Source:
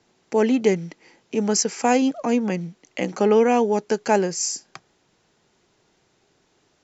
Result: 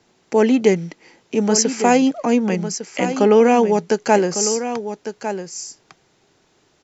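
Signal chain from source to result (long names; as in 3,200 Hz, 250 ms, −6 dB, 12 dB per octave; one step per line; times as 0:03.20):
single-tap delay 1,153 ms −10 dB
level +4 dB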